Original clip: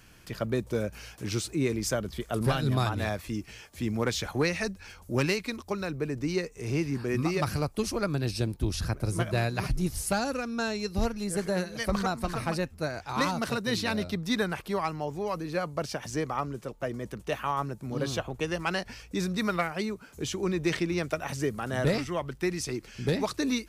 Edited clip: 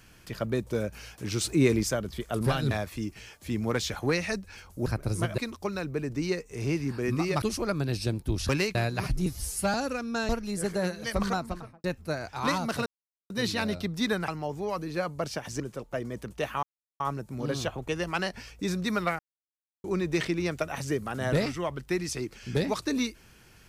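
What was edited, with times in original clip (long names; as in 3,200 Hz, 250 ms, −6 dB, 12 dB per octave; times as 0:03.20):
0:01.41–0:01.83: clip gain +5.5 dB
0:02.71–0:03.03: remove
0:05.18–0:05.44: swap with 0:08.83–0:09.35
0:07.48–0:07.76: remove
0:09.86–0:10.18: time-stretch 1.5×
0:10.73–0:11.02: remove
0:12.05–0:12.57: fade out and dull
0:13.59: splice in silence 0.44 s
0:14.57–0:14.86: remove
0:16.18–0:16.49: remove
0:17.52: splice in silence 0.37 s
0:19.71–0:20.36: silence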